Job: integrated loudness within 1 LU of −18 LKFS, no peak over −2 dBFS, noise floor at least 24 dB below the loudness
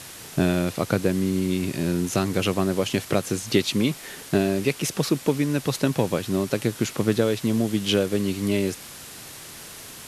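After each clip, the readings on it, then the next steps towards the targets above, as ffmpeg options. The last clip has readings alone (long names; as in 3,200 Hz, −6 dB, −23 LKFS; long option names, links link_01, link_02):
background noise floor −41 dBFS; target noise floor −48 dBFS; integrated loudness −24.0 LKFS; sample peak −6.0 dBFS; target loudness −18.0 LKFS
→ -af "afftdn=noise_reduction=7:noise_floor=-41"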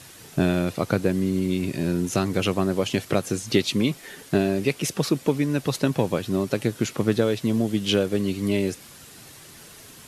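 background noise floor −46 dBFS; target noise floor −49 dBFS
→ -af "afftdn=noise_reduction=6:noise_floor=-46"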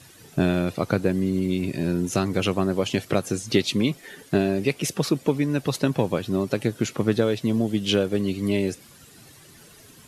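background noise floor −50 dBFS; integrated loudness −24.5 LKFS; sample peak −6.0 dBFS; target loudness −18.0 LKFS
→ -af "volume=6.5dB,alimiter=limit=-2dB:level=0:latency=1"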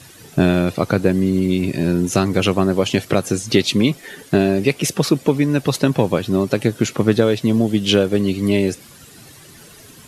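integrated loudness −18.0 LKFS; sample peak −2.0 dBFS; background noise floor −44 dBFS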